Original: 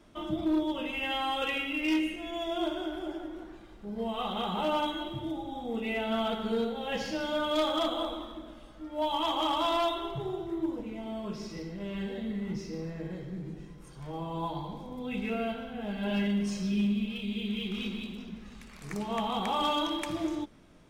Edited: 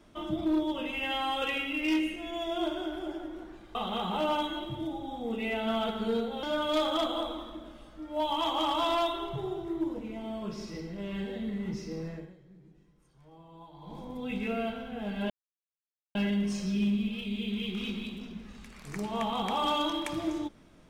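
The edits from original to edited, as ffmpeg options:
ffmpeg -i in.wav -filter_complex "[0:a]asplit=6[link_01][link_02][link_03][link_04][link_05][link_06];[link_01]atrim=end=3.752[link_07];[link_02]atrim=start=4.188:end=6.872[link_08];[link_03]atrim=start=7.248:end=13.21,asetpts=PTS-STARTPTS,afade=type=out:start_time=5.702:duration=0.26:curve=qua:silence=0.149624[link_09];[link_04]atrim=start=13.21:end=14.53,asetpts=PTS-STARTPTS,volume=-16.5dB[link_10];[link_05]atrim=start=14.53:end=16.12,asetpts=PTS-STARTPTS,afade=type=in:duration=0.26:curve=qua:silence=0.149624,afade=type=out:start_time=1.586:duration=0.004:curve=hsin,apad=pad_dur=0.85[link_11];[link_06]atrim=start=16.12,asetpts=PTS-STARTPTS,afade=type=in:duration=0.004:curve=hsin[link_12];[link_07][link_08]acrossfade=duration=0.004:curve1=hsin:curve2=hsin[link_13];[link_09][link_10][link_11][link_12]concat=n=4:v=0:a=1[link_14];[link_13][link_14]acrossfade=duration=0.004:curve1=hsin:curve2=hsin" out.wav

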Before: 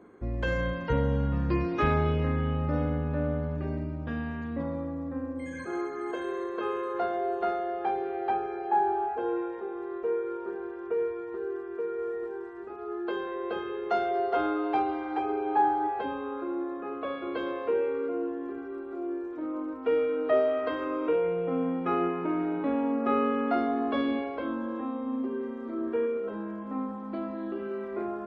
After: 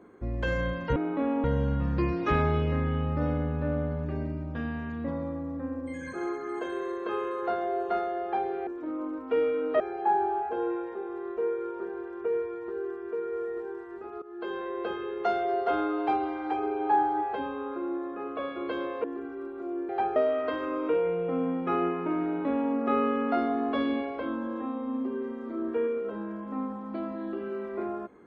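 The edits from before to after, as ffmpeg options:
ffmpeg -i in.wav -filter_complex "[0:a]asplit=9[link_01][link_02][link_03][link_04][link_05][link_06][link_07][link_08][link_09];[link_01]atrim=end=0.962[link_10];[link_02]atrim=start=22.428:end=22.912[link_11];[link_03]atrim=start=0.958:end=8.192[link_12];[link_04]atrim=start=19.218:end=20.352[link_13];[link_05]atrim=start=8.458:end=12.88,asetpts=PTS-STARTPTS,afade=type=out:start_time=4.418:duration=0.004:curve=hsin:silence=0.133352[link_14];[link_06]atrim=start=12.88:end=17.702,asetpts=PTS-STARTPTS,afade=type=in:duration=0.37:silence=0.133352[link_15];[link_07]atrim=start=18.368:end=19.222[link_16];[link_08]atrim=start=8.188:end=8.462[link_17];[link_09]atrim=start=20.348[link_18];[link_10][link_11]acrossfade=duration=0.004:curve1=hsin:curve2=hsin[link_19];[link_19][link_12]acrossfade=duration=0.004:curve1=hsin:curve2=hsin[link_20];[link_20][link_13]acrossfade=duration=0.004:curve1=hsin:curve2=hsin[link_21];[link_14][link_15]concat=n=2:v=0:a=1[link_22];[link_21][link_22]acrossfade=duration=0.004:curve1=hsin:curve2=hsin[link_23];[link_23][link_16]acrossfade=duration=0.004:curve1=hsin:curve2=hsin[link_24];[link_24][link_17]acrossfade=duration=0.004:curve1=hsin:curve2=hsin[link_25];[link_25][link_18]acrossfade=duration=0.004:curve1=hsin:curve2=hsin" out.wav

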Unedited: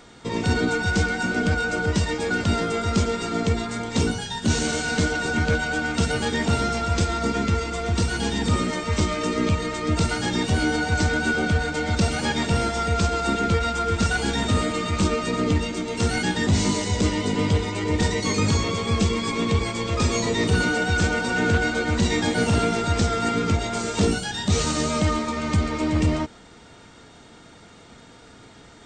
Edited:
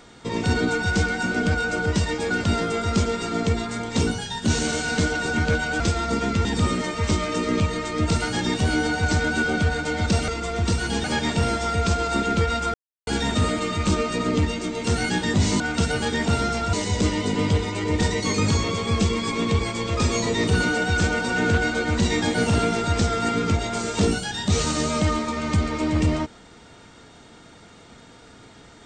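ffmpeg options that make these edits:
ffmpeg -i in.wav -filter_complex "[0:a]asplit=9[link_01][link_02][link_03][link_04][link_05][link_06][link_07][link_08][link_09];[link_01]atrim=end=5.802[link_10];[link_02]atrim=start=6.928:end=7.582[link_11];[link_03]atrim=start=8.338:end=12.172[link_12];[link_04]atrim=start=7.578:end=8.342[link_13];[link_05]atrim=start=12.168:end=13.87,asetpts=PTS-STARTPTS,afade=type=out:start_time=1.698:duration=0.004:curve=hsin[link_14];[link_06]atrim=start=13.87:end=14.2,asetpts=PTS-STARTPTS,volume=0[link_15];[link_07]atrim=start=14.2:end=16.732,asetpts=PTS-STARTPTS,afade=type=in:duration=0.004:curve=hsin[link_16];[link_08]atrim=start=5.798:end=6.932[link_17];[link_09]atrim=start=16.728[link_18];[link_10][link_11]acrossfade=duration=0.004:curve1=hsin:curve2=hsin[link_19];[link_19][link_12]acrossfade=duration=0.004:curve1=hsin:curve2=hsin[link_20];[link_20][link_13]acrossfade=duration=0.004:curve1=hsin:curve2=hsin[link_21];[link_14][link_15][link_16]concat=n=3:v=0:a=1[link_22];[link_21][link_22]acrossfade=duration=0.004:curve1=hsin:curve2=hsin[link_23];[link_23][link_17]acrossfade=duration=0.004:curve1=hsin:curve2=hsin[link_24];[link_24][link_18]acrossfade=duration=0.004:curve1=hsin:curve2=hsin" out.wav

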